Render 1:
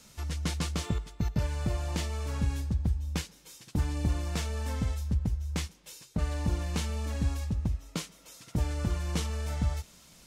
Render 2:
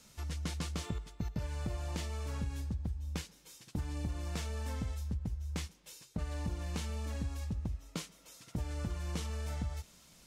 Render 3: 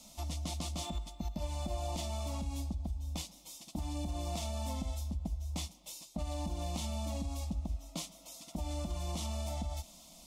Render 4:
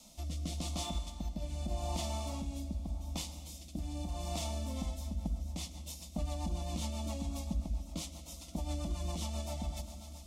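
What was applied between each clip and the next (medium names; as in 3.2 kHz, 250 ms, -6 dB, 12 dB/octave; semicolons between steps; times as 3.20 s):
compression, threshold -28 dBFS, peak gain reduction 6.5 dB; trim -4.5 dB
peak limiter -31 dBFS, peak gain reduction 6.5 dB; static phaser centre 430 Hz, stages 6; small resonant body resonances 670/3500 Hz, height 8 dB, ringing for 30 ms; trim +6 dB
plate-style reverb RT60 3.6 s, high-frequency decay 0.75×, DRR 8 dB; rotary cabinet horn 0.85 Hz, later 7.5 Hz, at 4.40 s; trim +1.5 dB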